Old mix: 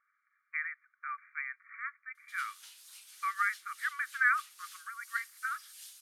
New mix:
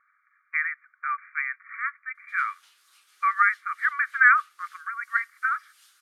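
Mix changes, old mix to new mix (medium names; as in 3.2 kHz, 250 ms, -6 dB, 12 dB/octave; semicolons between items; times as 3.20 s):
speech +12.0 dB; master: add treble shelf 4 kHz -12 dB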